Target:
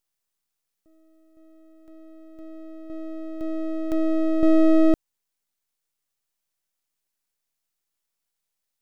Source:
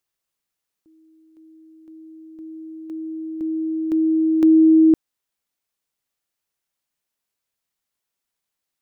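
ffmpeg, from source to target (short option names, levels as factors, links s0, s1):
-af "bass=f=250:g=1,treble=f=4000:g=5,aeval=exprs='max(val(0),0)':c=same"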